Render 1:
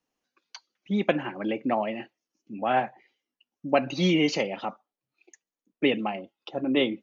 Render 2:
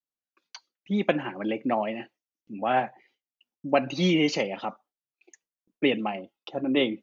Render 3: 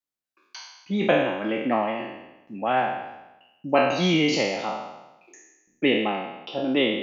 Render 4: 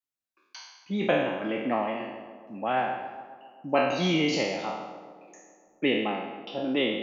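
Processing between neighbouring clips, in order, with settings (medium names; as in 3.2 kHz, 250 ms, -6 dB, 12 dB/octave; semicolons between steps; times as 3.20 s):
gate with hold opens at -59 dBFS
spectral sustain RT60 1.00 s
tape echo 136 ms, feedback 76%, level -13.5 dB, low-pass 1.9 kHz; trim -4 dB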